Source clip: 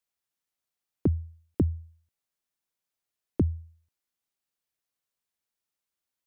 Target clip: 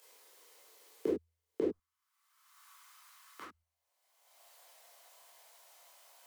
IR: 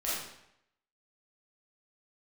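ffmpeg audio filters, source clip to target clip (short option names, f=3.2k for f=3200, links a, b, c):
-filter_complex "[0:a]acompressor=mode=upward:threshold=-32dB:ratio=2.5,asetnsamples=n=441:p=0,asendcmd='1.69 highpass f 1200;3.53 highpass f 660',highpass=f=430:t=q:w=5[a];[1:a]atrim=start_sample=2205,afade=t=out:st=0.22:d=0.01,atrim=end_sample=10143,asetrate=70560,aresample=44100[b];[a][b]afir=irnorm=-1:irlink=0,volume=-6dB"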